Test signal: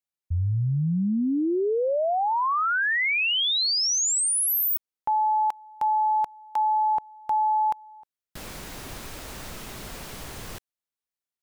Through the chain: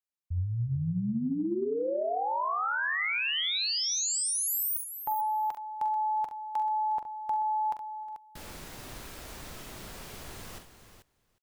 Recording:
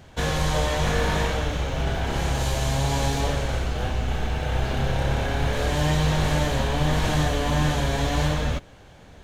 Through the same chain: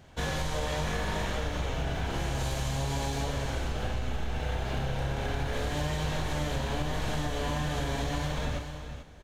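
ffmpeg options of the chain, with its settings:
-filter_complex "[0:a]asplit=2[s0][s1];[s1]aecho=0:1:41|44|68|438:0.133|0.355|0.282|0.282[s2];[s0][s2]amix=inputs=2:normalize=0,acompressor=threshold=0.1:ratio=6:attack=17:release=231:knee=1:detection=rms,asplit=2[s3][s4];[s4]aecho=0:1:361:0.119[s5];[s3][s5]amix=inputs=2:normalize=0,volume=0.473"

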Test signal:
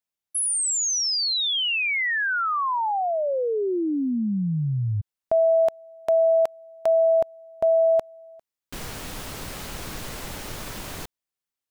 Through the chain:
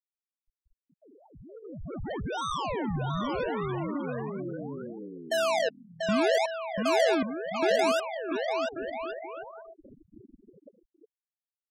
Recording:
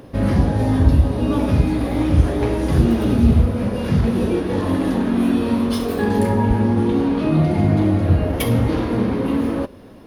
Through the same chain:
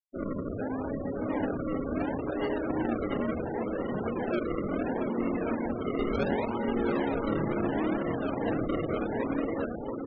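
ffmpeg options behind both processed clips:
-filter_complex "[0:a]highpass=370,lowpass=3200,acrossover=split=2200[s0][s1];[s1]acompressor=threshold=0.00794:ratio=16:attack=6.1:release=374:knee=6:detection=rms[s2];[s0][s2]amix=inputs=2:normalize=0,acrusher=samples=36:mix=1:aa=0.000001:lfo=1:lforange=36:lforate=0.71,aecho=1:1:690|1138|1430|1620|1743:0.631|0.398|0.251|0.158|0.1,afftfilt=real='re*gte(hypot(re,im),0.0708)':imag='im*gte(hypot(re,im),0.0708)':win_size=1024:overlap=0.75,volume=0.447"

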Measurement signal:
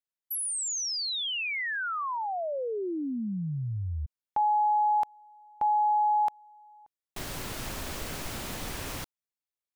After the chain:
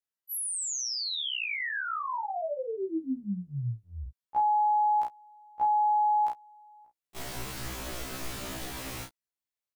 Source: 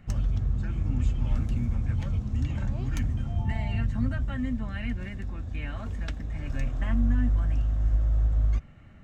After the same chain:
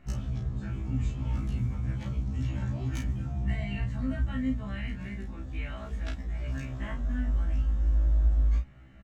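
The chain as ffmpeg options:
-filter_complex "[0:a]asplit=2[s0][s1];[s1]adelay=34,volume=0.531[s2];[s0][s2]amix=inputs=2:normalize=0,afftfilt=real='re*1.73*eq(mod(b,3),0)':imag='im*1.73*eq(mod(b,3),0)':win_size=2048:overlap=0.75"

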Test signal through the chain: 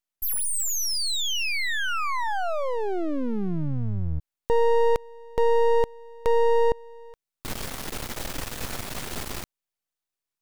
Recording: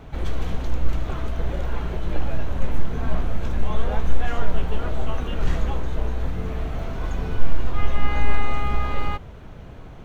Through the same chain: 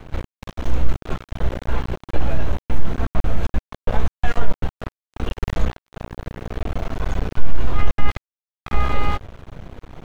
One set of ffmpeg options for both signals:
-af "acontrast=56,aeval=exprs='max(val(0),0)':c=same"

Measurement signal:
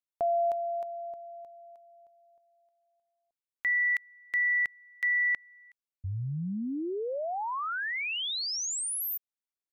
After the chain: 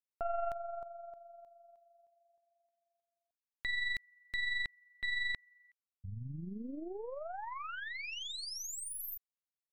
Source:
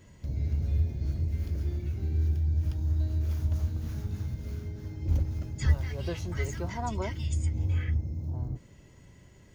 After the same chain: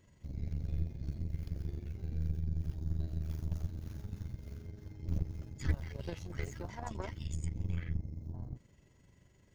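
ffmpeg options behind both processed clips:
-af "aeval=exprs='0.251*(cos(1*acos(clip(val(0)/0.251,-1,1)))-cos(1*PI/2))+0.0447*(cos(6*acos(clip(val(0)/0.251,-1,1)))-cos(6*PI/2))+0.00178*(cos(7*acos(clip(val(0)/0.251,-1,1)))-cos(7*PI/2))':c=same,tremolo=f=23:d=0.462,volume=0.422"

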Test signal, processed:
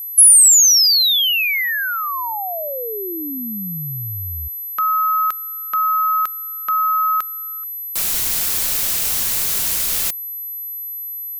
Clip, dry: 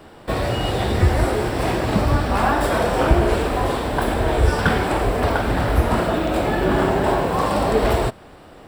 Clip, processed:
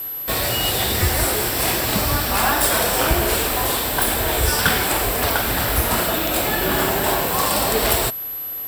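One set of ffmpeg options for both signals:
-af "crystalizer=i=9:c=0,aeval=exprs='val(0)+0.0891*sin(2*PI*12000*n/s)':c=same,volume=0.562"

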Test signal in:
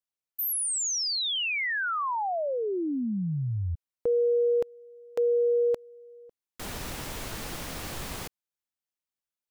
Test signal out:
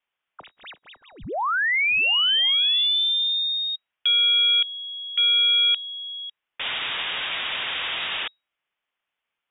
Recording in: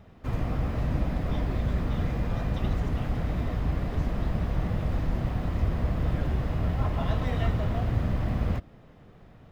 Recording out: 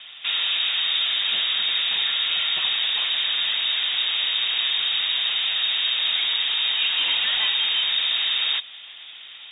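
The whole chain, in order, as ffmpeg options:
-filter_complex "[0:a]asplit=2[s0][s1];[s1]highpass=f=720:p=1,volume=20,asoftclip=type=tanh:threshold=0.211[s2];[s0][s2]amix=inputs=2:normalize=0,lowpass=f=2100:p=1,volume=0.501,lowpass=f=3200:t=q:w=0.5098,lowpass=f=3200:t=q:w=0.6013,lowpass=f=3200:t=q:w=0.9,lowpass=f=3200:t=q:w=2.563,afreqshift=-3800"

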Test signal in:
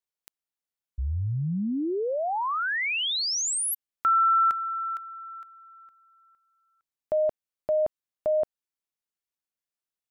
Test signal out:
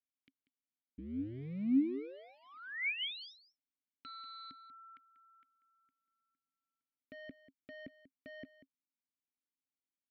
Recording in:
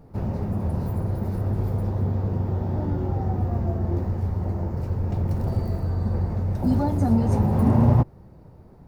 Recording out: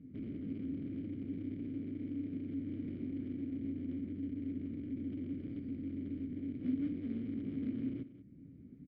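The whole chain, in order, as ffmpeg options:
-filter_complex "[0:a]bass=f=250:g=13,treble=f=4000:g=-9,acompressor=threshold=0.2:ratio=4:attack=0.21:release=762:knee=6:detection=peak,aresample=11025,asoftclip=type=hard:threshold=0.0562,aresample=44100,asplit=3[s0][s1][s2];[s0]bandpass=f=270:t=q:w=8,volume=1[s3];[s1]bandpass=f=2290:t=q:w=8,volume=0.501[s4];[s2]bandpass=f=3010:t=q:w=8,volume=0.355[s5];[s3][s4][s5]amix=inputs=3:normalize=0,asplit=2[s6][s7];[s7]aecho=0:1:190:0.188[s8];[s6][s8]amix=inputs=2:normalize=0,volume=1.19"

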